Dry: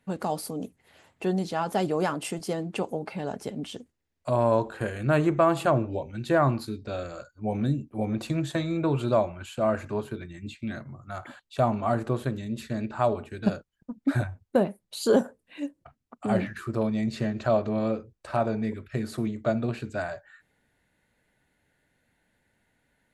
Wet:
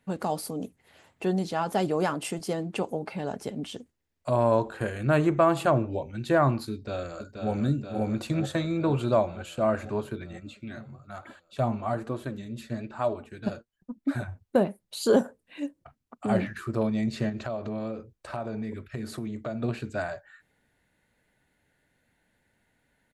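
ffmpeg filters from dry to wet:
ffmpeg -i in.wav -filter_complex "[0:a]asplit=2[link_01][link_02];[link_02]afade=type=in:start_time=6.72:duration=0.01,afade=type=out:start_time=7.49:duration=0.01,aecho=0:1:480|960|1440|1920|2400|2880|3360|3840|4320|4800|5280|5760:0.530884|0.398163|0.298622|0.223967|0.167975|0.125981|0.094486|0.0708645|0.0531484|0.0398613|0.029896|0.022422[link_03];[link_01][link_03]amix=inputs=2:normalize=0,asettb=1/sr,asplit=3[link_04][link_05][link_06];[link_04]atrim=end=10.404[link_07];[link_05]atrim=start=10.4:end=14.28,asetpts=PTS-STARTPTS,afade=type=in:duration=0.004:curve=qsin,afade=type=out:start_time=3.876:duration=0.004:curve=qsin,flanger=delay=3:depth=5.8:regen=44:speed=1.1:shape=sinusoidal[link_08];[link_06]atrim=start=14.276[link_09];[link_07][link_08]acrossfade=duration=0.004:curve1=hsin:curve2=qsin[link_10];[link_10][link_09]acrossfade=duration=0.004:curve1=qsin:curve2=hsin,asettb=1/sr,asplit=3[link_11][link_12][link_13];[link_11]atrim=end=17.294[link_14];[link_12]atrim=start=17.29:end=19.62,asetpts=PTS-STARTPTS,afade=type=in:duration=0.004:curve=qsin,afade=type=out:start_time=2.326:duration=0.004:curve=qsin,acompressor=threshold=-30dB:ratio=4:attack=3.2:release=140:knee=1:detection=peak[link_15];[link_13]atrim=start=19.616[link_16];[link_14][link_15]acrossfade=duration=0.004:curve1=hsin:curve2=qsin[link_17];[link_17][link_16]acrossfade=duration=0.004:curve1=qsin:curve2=hsin" out.wav

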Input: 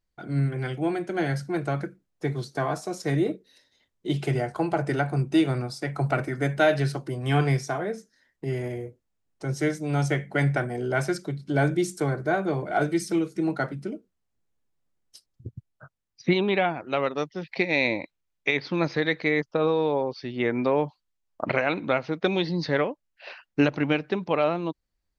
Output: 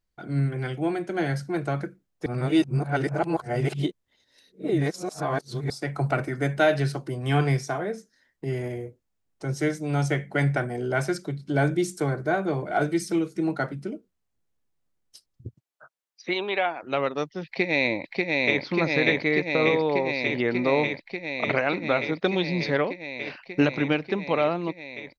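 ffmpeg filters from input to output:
ffmpeg -i in.wav -filter_complex "[0:a]asettb=1/sr,asplit=3[link_01][link_02][link_03];[link_01]atrim=end=15.544[link_04];[link_02]atrim=start=15.54:end=16.83,asetpts=PTS-STARTPTS,afade=type=in:duration=0.004:curve=qsin,afade=type=out:start_time=1.286:duration=0.004:curve=qsin,highpass=470[link_05];[link_03]atrim=start=16.826[link_06];[link_04][link_05]acrossfade=duration=0.004:curve1=hsin:curve2=qsin[link_07];[link_07][link_06]acrossfade=duration=0.004:curve1=qsin:curve2=hsin,asplit=2[link_08][link_09];[link_09]afade=type=in:start_time=17.45:duration=0.01,afade=type=out:start_time=18.63:duration=0.01,aecho=0:1:590|1180|1770|2360|2950|3540|4130|4720|5310|5900|6490|7080:0.841395|0.715186|0.607908|0.516722|0.439214|0.373331|0.317332|0.269732|0.229272|0.194881|0.165649|0.140802[link_10];[link_08][link_10]amix=inputs=2:normalize=0,asplit=3[link_11][link_12][link_13];[link_11]atrim=end=2.262[link_14];[link_12]atrim=start=2.258:end=5.702,asetpts=PTS-STARTPTS,areverse[link_15];[link_13]atrim=start=5.698[link_16];[link_14][link_15]acrossfade=duration=0.004:curve1=hsin:curve2=hsin[link_17];[link_17][link_16]acrossfade=duration=0.004:curve1=hsin:curve2=hsin" out.wav

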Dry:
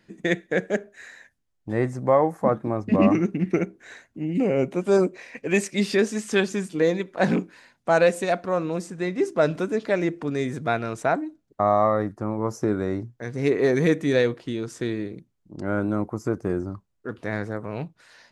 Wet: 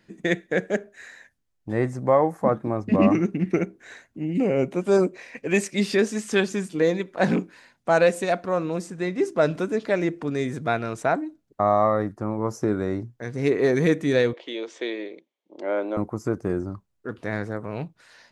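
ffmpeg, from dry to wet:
ffmpeg -i in.wav -filter_complex "[0:a]asettb=1/sr,asplit=3[link_01][link_02][link_03];[link_01]atrim=end=14.334[link_04];[link_02]atrim=start=14.33:end=15.97,asetpts=PTS-STARTPTS,afade=type=in:duration=0.004:curve=qsin,afade=type=out:start_time=1.636:duration=0.004:curve=qsin,highpass=frequency=340:width=0.5412,highpass=frequency=340:width=1.3066,equalizer=frequency=570:width_type=q:width=4:gain=7,equalizer=frequency=880:width_type=q:width=4:gain=3,equalizer=frequency=1400:width_type=q:width=4:gain=-6,equalizer=frequency=2200:width_type=q:width=4:gain=7,equalizer=frequency=3300:width_type=q:width=4:gain=8,equalizer=frequency=5000:width_type=q:width=4:gain=-6,lowpass=frequency=6000:width=0.5412,lowpass=frequency=6000:width=1.3066[link_05];[link_03]atrim=start=15.966[link_06];[link_04][link_05]acrossfade=duration=0.004:curve1=hsin:curve2=qsin[link_07];[link_07][link_06]acrossfade=duration=0.004:curve1=qsin:curve2=hsin" out.wav

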